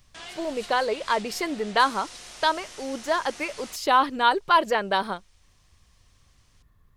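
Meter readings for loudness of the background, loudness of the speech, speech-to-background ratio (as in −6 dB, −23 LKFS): −41.5 LKFS, −25.0 LKFS, 16.5 dB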